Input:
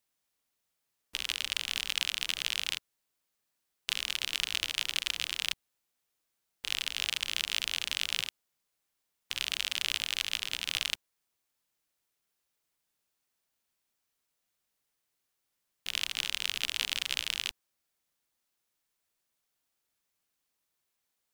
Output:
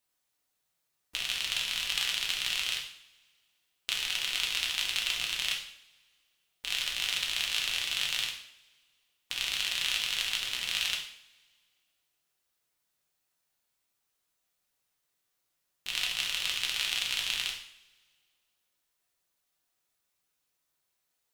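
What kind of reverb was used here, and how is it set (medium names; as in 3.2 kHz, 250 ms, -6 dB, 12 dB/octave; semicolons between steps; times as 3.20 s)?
two-slope reverb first 0.57 s, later 1.9 s, from -22 dB, DRR -1 dB; trim -1.5 dB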